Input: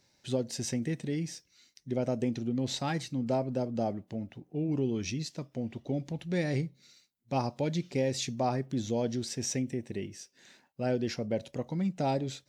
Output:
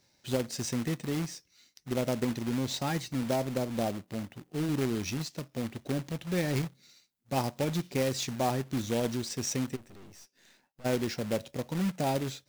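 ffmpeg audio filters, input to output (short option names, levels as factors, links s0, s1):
-filter_complex "[0:a]asplit=3[s0][s1][s2];[s0]afade=t=out:st=9.75:d=0.02[s3];[s1]aeval=exprs='(tanh(355*val(0)+0.8)-tanh(0.8))/355':c=same,afade=t=in:st=9.75:d=0.02,afade=t=out:st=10.84:d=0.02[s4];[s2]afade=t=in:st=10.84:d=0.02[s5];[s3][s4][s5]amix=inputs=3:normalize=0,acrusher=bits=2:mode=log:mix=0:aa=0.000001"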